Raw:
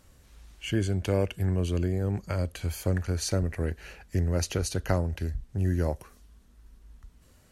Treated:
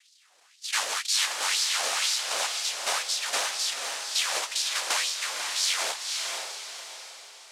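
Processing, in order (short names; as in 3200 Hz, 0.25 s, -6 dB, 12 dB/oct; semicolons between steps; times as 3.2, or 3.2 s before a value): noise vocoder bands 1; LFO high-pass sine 2 Hz 550–4700 Hz; diffused feedback echo 0.514 s, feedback 43%, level -4 dB; gain -2 dB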